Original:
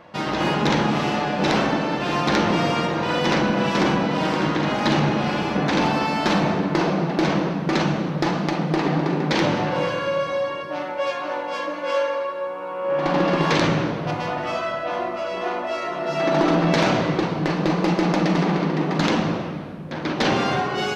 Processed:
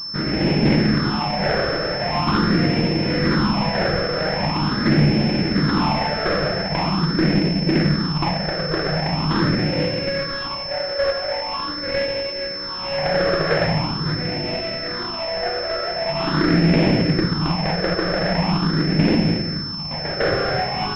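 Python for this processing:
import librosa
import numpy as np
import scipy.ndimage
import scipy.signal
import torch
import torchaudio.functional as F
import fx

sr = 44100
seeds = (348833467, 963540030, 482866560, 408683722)

y = fx.halfwave_hold(x, sr)
y = fx.phaser_stages(y, sr, stages=6, low_hz=240.0, high_hz=1200.0, hz=0.43, feedback_pct=25)
y = fx.pwm(y, sr, carrier_hz=5300.0)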